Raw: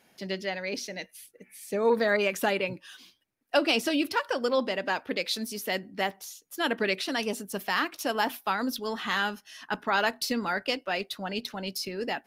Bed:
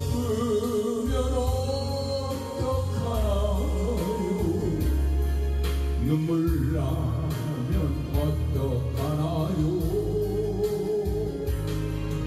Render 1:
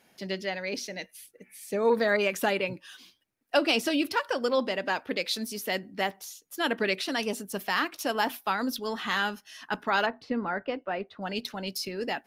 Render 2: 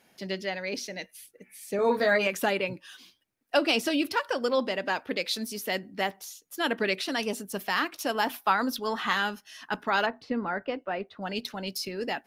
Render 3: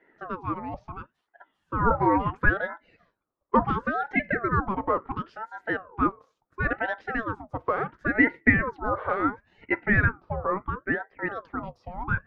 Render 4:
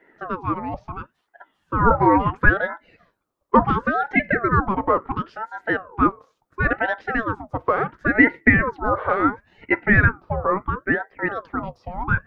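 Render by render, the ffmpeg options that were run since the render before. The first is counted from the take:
-filter_complex "[0:a]asplit=3[s0][s1][s2];[s0]afade=t=out:st=10.05:d=0.02[s3];[s1]lowpass=1500,afade=t=in:st=10.05:d=0.02,afade=t=out:st=11.21:d=0.02[s4];[s2]afade=t=in:st=11.21:d=0.02[s5];[s3][s4][s5]amix=inputs=3:normalize=0"
-filter_complex "[0:a]asettb=1/sr,asplit=3[s0][s1][s2];[s0]atrim=end=1.774[s3];[s1]atrim=start=1.77:end=2.27,asetpts=PTS-STARTPTS,afade=t=in:d=0.004:c=qsin,afade=t=out:st=0.496:d=0.004:c=qsin,asplit=2[s4][s5];[s5]adelay=16,volume=0.708[s6];[s4][s6]amix=inputs=2:normalize=0,atrim=end_sample=22050[s7];[s2]atrim=start=2.266[s8];[s3][s7]acrossfade=d=0.004:c1=hsin:c2=qsin[s9];[s9][s8]acrossfade=d=0.004:c1=qsin:c2=hsin,asettb=1/sr,asplit=3[s10][s11][s12];[s10]atrim=end=8.344[s13];[s11]atrim=start=8.34:end=9.13,asetpts=PTS-STARTPTS,afade=t=in:d=0.004:c=qsin,afade=t=out:st=0.786:d=0.004:c=qsin,equalizer=f=1100:t=o:w=1.6:g=5.5[s14];[s12]atrim=start=9.126[s15];[s13][s14]acrossfade=d=0.004:c1=hsin:c2=qsin[s16];[s16][s15]acrossfade=d=0.004:c1=qsin:c2=hsin"
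-af "lowpass=f=830:t=q:w=4.9,aeval=exprs='val(0)*sin(2*PI*740*n/s+740*0.6/0.72*sin(2*PI*0.72*n/s))':c=same"
-af "volume=2,alimiter=limit=0.891:level=0:latency=1"

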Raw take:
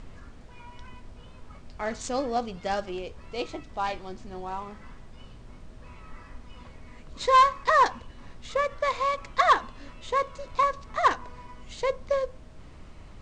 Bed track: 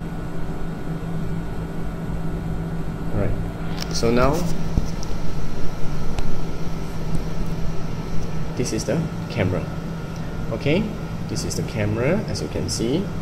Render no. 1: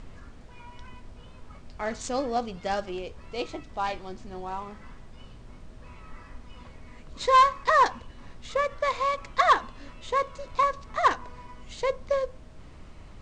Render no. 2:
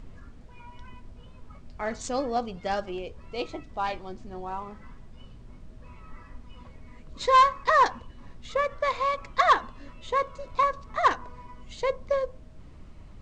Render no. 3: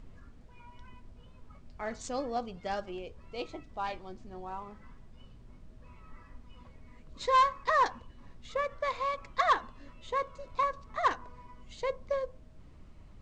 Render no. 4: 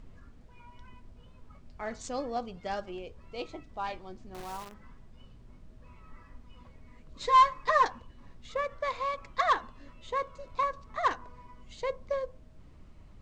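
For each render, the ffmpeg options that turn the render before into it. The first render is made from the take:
-af anull
-af "afftdn=nr=6:nf=-48"
-af "volume=0.501"
-filter_complex "[0:a]asettb=1/sr,asplit=3[s0][s1][s2];[s0]atrim=end=4.344[s3];[s1]atrim=start=4.34:end=4.74,asetpts=PTS-STARTPTS,afade=t=in:d=0.004:c=qsin,afade=t=out:st=0.396:d=0.004:c=qsin,acrusher=bits=8:dc=4:mix=0:aa=0.000001[s4];[s2]atrim=start=4.736[s5];[s3][s4]acrossfade=d=0.004:c1=hsin:c2=qsin[s6];[s6][s5]acrossfade=d=0.004:c1=qsin:c2=hsin,asettb=1/sr,asplit=3[s7][s8][s9];[s7]atrim=end=7.234[s10];[s8]atrim=start=7.23:end=7.85,asetpts=PTS-STARTPTS,afade=t=in:d=0.004:c=qsin,afade=t=out:st=0.616:d=0.004:c=qsin,aecho=1:1:6.7:0.65,atrim=end_sample=27342[s11];[s9]atrim=start=7.846[s12];[s10][s11]acrossfade=d=0.004:c1=hsin:c2=qsin[s13];[s13][s12]acrossfade=d=0.004:c1=qsin:c2=hsin"

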